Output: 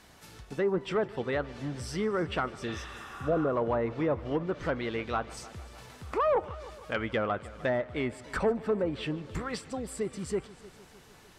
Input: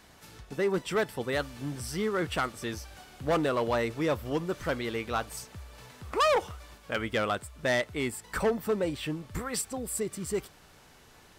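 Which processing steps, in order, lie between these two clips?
treble cut that deepens with the level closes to 1,100 Hz, closed at −23.5 dBFS
healed spectral selection 0:02.69–0:03.46, 720–4,700 Hz both
echo machine with several playback heads 152 ms, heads first and second, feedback 59%, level −22 dB

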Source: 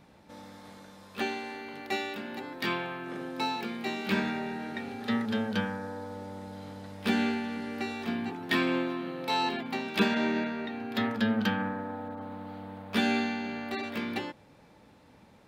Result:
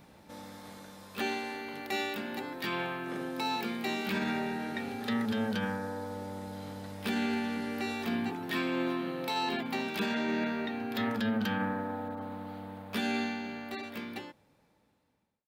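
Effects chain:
fade-out on the ending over 3.46 s
high-shelf EQ 10,000 Hz +10.5 dB
brickwall limiter −24 dBFS, peak gain reduction 10 dB
level +1 dB

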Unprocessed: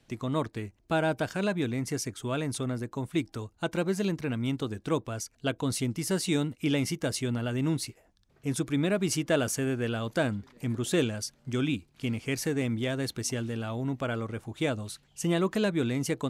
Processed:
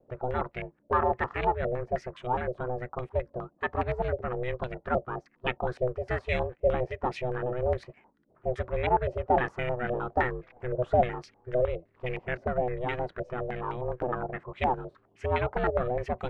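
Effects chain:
ring modulation 250 Hz
low-pass on a step sequencer 9.7 Hz 600–2,300 Hz

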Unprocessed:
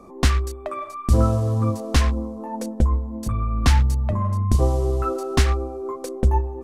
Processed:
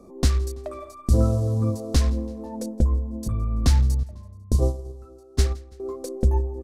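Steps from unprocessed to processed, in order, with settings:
0:04.03–0:05.80: noise gate −17 dBFS, range −20 dB
flat-topped bell 1,600 Hz −9 dB 2.3 octaves
repeating echo 166 ms, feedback 53%, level −23.5 dB
level −1.5 dB

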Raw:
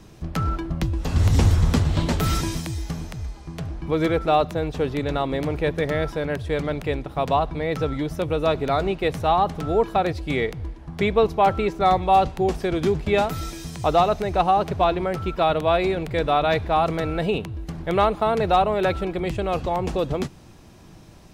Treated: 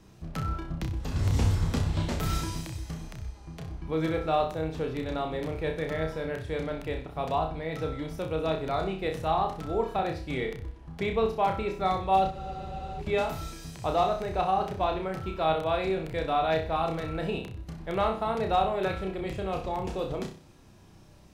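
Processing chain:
flutter between parallel walls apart 5.4 metres, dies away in 0.39 s
frozen spectrum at 0:12.34, 0.66 s
level −9 dB

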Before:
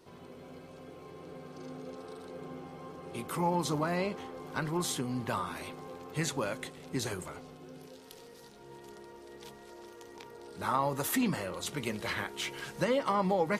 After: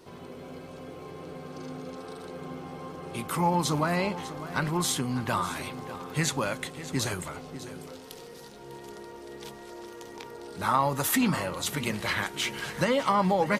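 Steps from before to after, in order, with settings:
on a send: single-tap delay 599 ms −14.5 dB
on the sum: dynamic equaliser 410 Hz, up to −5 dB, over −47 dBFS, Q 1.2
level +6.5 dB

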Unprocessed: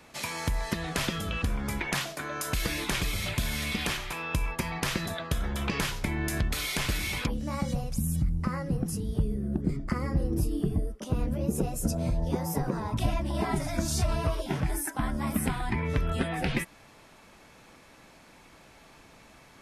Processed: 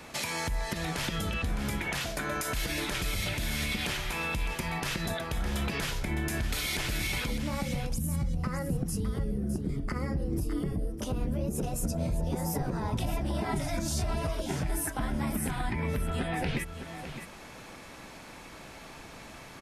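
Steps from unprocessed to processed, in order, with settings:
dynamic equaliser 1,100 Hz, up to −5 dB, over −53 dBFS, Q 6.4
downward compressor 2 to 1, threshold −40 dBFS, peak gain reduction 11 dB
brickwall limiter −29 dBFS, peak gain reduction 7 dB
single-tap delay 610 ms −10 dB
level +7 dB

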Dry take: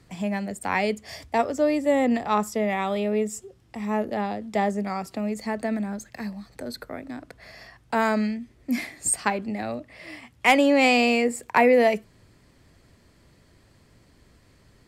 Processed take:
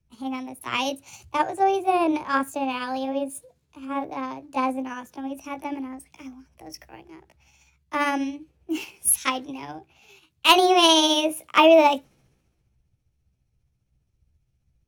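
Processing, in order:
pitch shift by two crossfaded delay taps +4.5 semitones
multiband upward and downward expander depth 70%
level −1 dB

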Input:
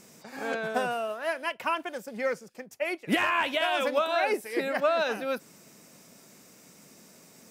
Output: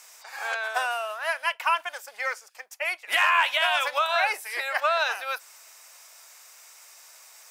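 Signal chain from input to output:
high-pass filter 810 Hz 24 dB per octave
level +6 dB

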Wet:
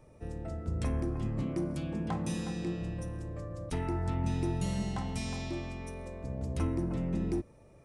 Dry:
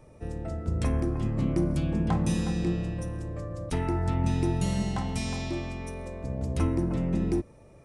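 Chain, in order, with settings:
0:01.42–0:02.81: high-pass filter 170 Hz 6 dB per octave
in parallel at −6 dB: soft clipping −22 dBFS, distortion −16 dB
on the sum: level −8 dB

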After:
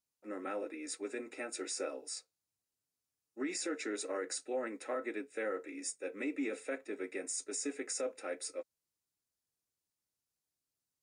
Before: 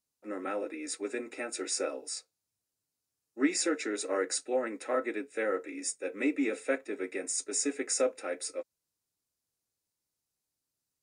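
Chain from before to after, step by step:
brickwall limiter −24 dBFS, peak gain reduction 8.5 dB
level −4.5 dB

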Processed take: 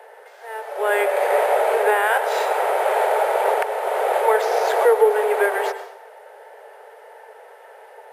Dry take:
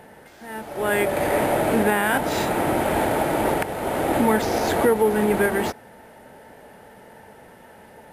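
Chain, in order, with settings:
Butterworth high-pass 410 Hz 96 dB per octave
high-shelf EQ 2,500 Hz −9 dB
dense smooth reverb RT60 0.7 s, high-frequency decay 0.9×, pre-delay 90 ms, DRR 10.5 dB
level +4.5 dB

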